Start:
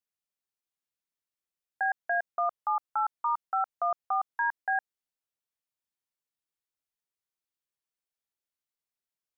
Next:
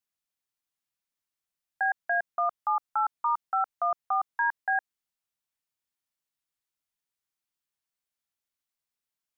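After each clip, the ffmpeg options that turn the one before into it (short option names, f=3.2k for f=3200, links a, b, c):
-af "equalizer=f=460:w=1.5:g=-5.5,volume=2.5dB"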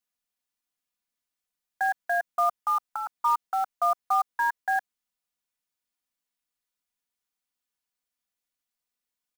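-af "aecho=1:1:4.1:0.57,acrusher=bits=5:mode=log:mix=0:aa=0.000001"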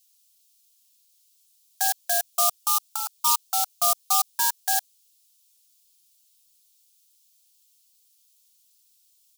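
-af "aexciter=amount=15.2:drive=5.2:freq=2.7k,volume=-2.5dB"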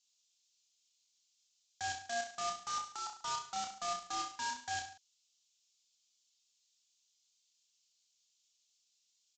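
-af "aresample=16000,asoftclip=type=tanh:threshold=-28.5dB,aresample=44100,aecho=1:1:30|63|99.3|139.2|183.2:0.631|0.398|0.251|0.158|0.1,volume=-8dB"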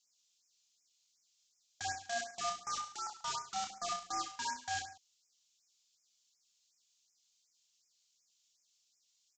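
-af "afftfilt=real='re*(1-between(b*sr/1024,290*pow(3600/290,0.5+0.5*sin(2*PI*2.7*pts/sr))/1.41,290*pow(3600/290,0.5+0.5*sin(2*PI*2.7*pts/sr))*1.41))':imag='im*(1-between(b*sr/1024,290*pow(3600/290,0.5+0.5*sin(2*PI*2.7*pts/sr))/1.41,290*pow(3600/290,0.5+0.5*sin(2*PI*2.7*pts/sr))*1.41))':win_size=1024:overlap=0.75,volume=1dB"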